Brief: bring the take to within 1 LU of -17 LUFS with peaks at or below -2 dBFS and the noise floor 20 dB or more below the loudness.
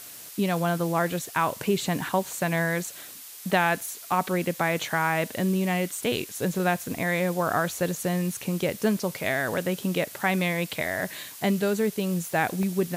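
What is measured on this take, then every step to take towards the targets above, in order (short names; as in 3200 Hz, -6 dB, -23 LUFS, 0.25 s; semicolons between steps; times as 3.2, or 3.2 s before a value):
dropouts 3; longest dropout 1.1 ms; noise floor -43 dBFS; noise floor target -47 dBFS; loudness -26.5 LUFS; peak -9.5 dBFS; loudness target -17.0 LUFS
-> interpolate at 2.01/3.5/12.63, 1.1 ms; denoiser 6 dB, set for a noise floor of -43 dBFS; gain +9.5 dB; limiter -2 dBFS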